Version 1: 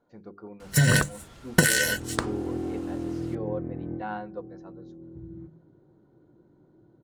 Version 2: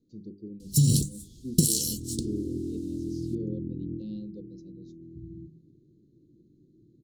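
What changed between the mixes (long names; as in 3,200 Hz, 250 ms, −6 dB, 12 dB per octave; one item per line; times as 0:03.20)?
speech +5.0 dB
master: add inverse Chebyshev band-stop filter 770–1,900 Hz, stop band 60 dB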